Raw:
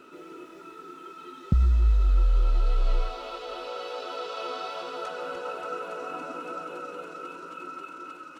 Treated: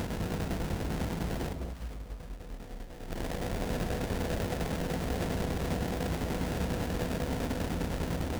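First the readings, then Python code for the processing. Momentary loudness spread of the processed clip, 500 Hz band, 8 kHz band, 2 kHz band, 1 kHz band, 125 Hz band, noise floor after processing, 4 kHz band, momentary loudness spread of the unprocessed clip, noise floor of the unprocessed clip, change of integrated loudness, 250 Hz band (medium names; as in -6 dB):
12 LU, +0.5 dB, no reading, +1.0 dB, -4.5 dB, -3.5 dB, -44 dBFS, -0.5 dB, 20 LU, -46 dBFS, -4.0 dB, +8.5 dB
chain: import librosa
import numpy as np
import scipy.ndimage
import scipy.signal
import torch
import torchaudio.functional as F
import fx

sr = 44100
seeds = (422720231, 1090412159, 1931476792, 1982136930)

p1 = fx.bin_compress(x, sr, power=0.2)
p2 = fx.peak_eq(p1, sr, hz=130.0, db=-14.5, octaves=0.42)
p3 = fx.over_compress(p2, sr, threshold_db=-23.0, ratio=-0.5)
p4 = fx.tremolo_shape(p3, sr, shape='saw_down', hz=10.0, depth_pct=70)
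p5 = 10.0 ** (-25.5 / 20.0) * np.tanh(p4 / 10.0 ** (-25.5 / 20.0))
p6 = scipy.signal.sosfilt(scipy.signal.butter(2, 46.0, 'highpass', fs=sr, output='sos'), p5)
p7 = fx.sample_hold(p6, sr, seeds[0], rate_hz=1200.0, jitter_pct=20)
p8 = p7 + fx.echo_alternate(p7, sr, ms=205, hz=810.0, feedback_pct=51, wet_db=-5, dry=0)
p9 = fx.end_taper(p8, sr, db_per_s=150.0)
y = F.gain(torch.from_numpy(p9), -1.5).numpy()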